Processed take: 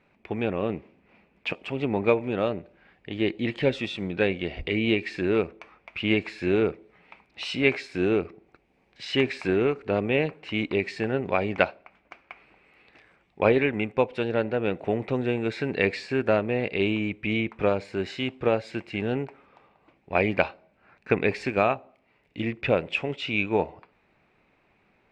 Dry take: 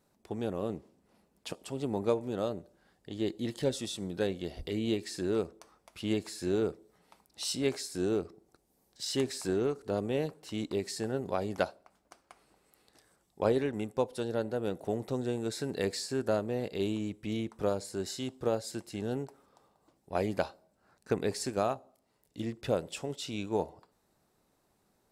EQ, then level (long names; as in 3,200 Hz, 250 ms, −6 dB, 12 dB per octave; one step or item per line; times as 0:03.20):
low-pass with resonance 2,400 Hz, resonance Q 5.9
+6.5 dB